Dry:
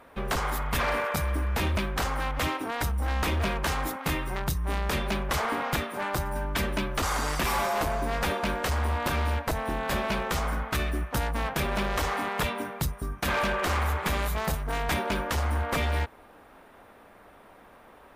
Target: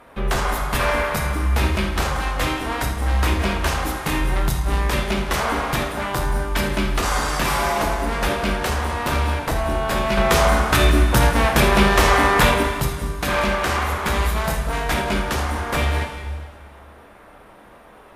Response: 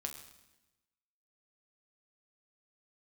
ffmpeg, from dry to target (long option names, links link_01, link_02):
-filter_complex "[0:a]asettb=1/sr,asplit=3[link_01][link_02][link_03];[link_01]atrim=end=10.174[link_04];[link_02]atrim=start=10.17:end=12.63,asetpts=PTS-STARTPTS,afade=type=in:duration=0.004:curve=qsin,afade=type=out:start_time=2.456:duration=0.004:curve=qsin,acontrast=70[link_05];[link_03]atrim=start=12.626[link_06];[link_04][link_05]acrossfade=duration=0.004:curve1=hsin:curve2=qsin[link_07];[link_07][link_06]acrossfade=duration=0.004:curve1=qsin:curve2=hsin[link_08];[1:a]atrim=start_sample=2205,asetrate=25578,aresample=44100[link_09];[link_08][link_09]afir=irnorm=-1:irlink=0,volume=4.5dB"